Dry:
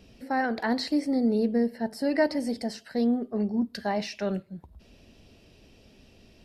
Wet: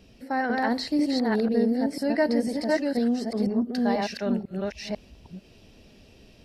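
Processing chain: chunks repeated in reverse 495 ms, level -1 dB

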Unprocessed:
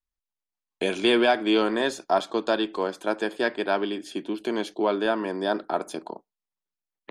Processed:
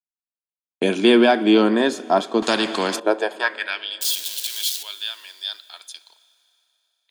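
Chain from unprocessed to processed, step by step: 4.01–4.83 s: zero-crossing glitches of -20.5 dBFS; gate -36 dBFS, range -21 dB; high-pass sweep 210 Hz -> 3.6 kHz, 2.87–3.90 s; Schroeder reverb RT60 3.2 s, combs from 30 ms, DRR 18 dB; 2.42–3.00 s: spectrum-flattening compressor 2:1; trim +3.5 dB

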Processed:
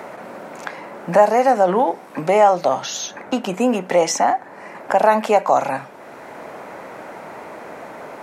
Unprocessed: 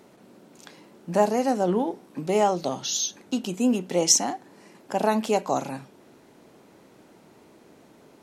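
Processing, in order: high-order bell 1.1 kHz +12.5 dB 2.5 oct; in parallel at -1.5 dB: peak limiter -10.5 dBFS, peak gain reduction 11.5 dB; on the sum: three bands compressed up and down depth 40%; trim -3.5 dB

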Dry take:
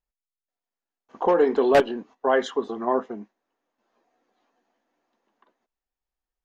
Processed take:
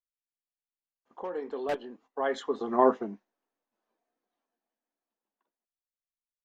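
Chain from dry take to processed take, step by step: Doppler pass-by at 2.87 s, 11 m/s, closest 2.1 m; trim +2 dB

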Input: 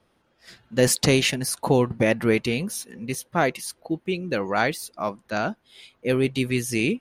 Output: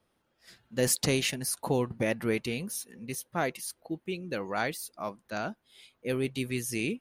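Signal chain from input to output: treble shelf 9.1 kHz +9 dB; trim -8.5 dB

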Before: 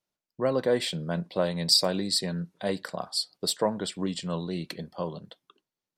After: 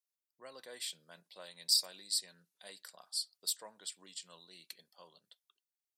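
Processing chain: differentiator; trim -4.5 dB

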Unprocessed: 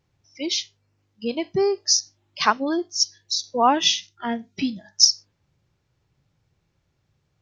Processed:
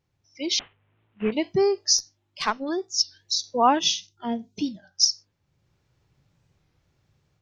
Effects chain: 0.59–1.33 s: CVSD coder 16 kbps; 3.79–4.67 s: peaking EQ 1.7 kHz -14.5 dB 1 oct; level rider gain up to 8 dB; 1.98–2.69 s: valve stage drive 6 dB, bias 0.45; warped record 33 1/3 rpm, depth 160 cents; trim -5.5 dB

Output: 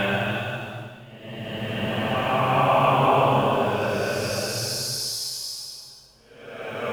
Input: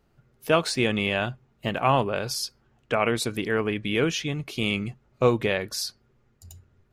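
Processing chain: two-slope reverb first 0.33 s, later 2.6 s, from -27 dB, DRR 11.5 dB; in parallel at -10 dB: word length cut 6-bit, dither none; on the sum: Paulstretch 4.2×, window 0.50 s, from 1.21 s

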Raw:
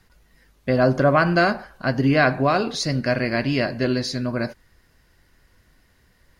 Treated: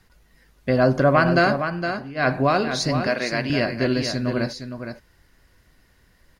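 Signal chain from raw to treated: 1.56–2.29 s: dip -18.5 dB, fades 0.14 s; 3.07–3.50 s: Bessel high-pass 380 Hz, order 2; delay 463 ms -8 dB

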